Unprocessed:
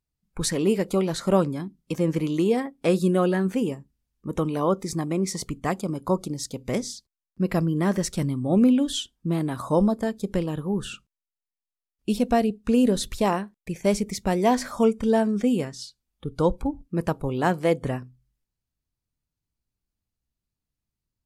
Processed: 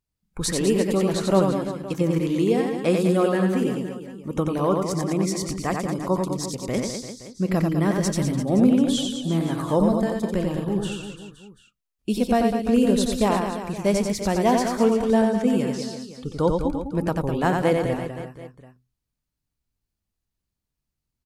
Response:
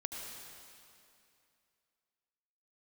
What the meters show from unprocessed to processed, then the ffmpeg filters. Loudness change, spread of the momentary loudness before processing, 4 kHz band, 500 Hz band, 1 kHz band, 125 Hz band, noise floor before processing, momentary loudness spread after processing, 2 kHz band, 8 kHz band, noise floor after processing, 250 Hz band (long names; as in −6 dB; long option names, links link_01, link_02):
+2.0 dB, 12 LU, +2.0 dB, +2.0 dB, +2.0 dB, +2.0 dB, below −85 dBFS, 11 LU, +2.0 dB, +2.0 dB, −83 dBFS, +2.0 dB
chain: -af "aecho=1:1:90|202.5|343.1|518.9|738.6:0.631|0.398|0.251|0.158|0.1"